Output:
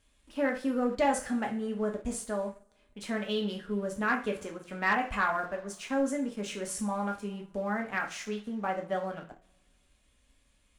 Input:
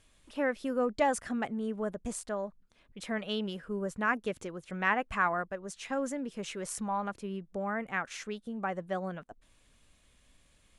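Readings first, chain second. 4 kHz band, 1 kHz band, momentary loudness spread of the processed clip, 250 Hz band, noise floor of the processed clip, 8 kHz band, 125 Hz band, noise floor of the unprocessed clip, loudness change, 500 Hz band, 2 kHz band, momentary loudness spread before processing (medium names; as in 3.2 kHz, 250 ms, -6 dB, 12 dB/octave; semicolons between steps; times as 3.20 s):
+1.5 dB, +1.0 dB, 10 LU, +3.0 dB, -68 dBFS, +2.0 dB, +1.0 dB, -66 dBFS, +2.0 dB, +1.5 dB, +1.0 dB, 11 LU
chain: two-slope reverb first 0.37 s, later 1.9 s, from -26 dB, DRR 1 dB; waveshaping leveller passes 1; trim -4.5 dB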